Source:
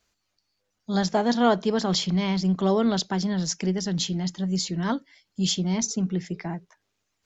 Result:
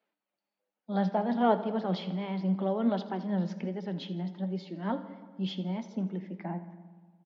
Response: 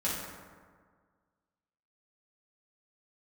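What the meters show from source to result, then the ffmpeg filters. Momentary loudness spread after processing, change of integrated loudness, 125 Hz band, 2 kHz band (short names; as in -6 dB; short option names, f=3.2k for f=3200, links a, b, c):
11 LU, -7.0 dB, -7.0 dB, -9.5 dB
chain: -filter_complex "[0:a]tremolo=f=2:d=0.36,aecho=1:1:82|164|246|328|410|492:0.141|0.0833|0.0492|0.029|0.0171|0.0101,flanger=delay=2.2:depth=3.6:regen=68:speed=1.3:shape=sinusoidal,highpass=f=170:w=0.5412,highpass=f=170:w=1.3066,equalizer=f=220:t=q:w=4:g=5,equalizer=f=310:t=q:w=4:g=4,equalizer=f=570:t=q:w=4:g=9,equalizer=f=830:t=q:w=4:g=7,lowpass=f=3.2k:w=0.5412,lowpass=f=3.2k:w=1.3066,asplit=2[a][b];[1:a]atrim=start_sample=2205[c];[b][c]afir=irnorm=-1:irlink=0,volume=-18dB[d];[a][d]amix=inputs=2:normalize=0,volume=-5dB"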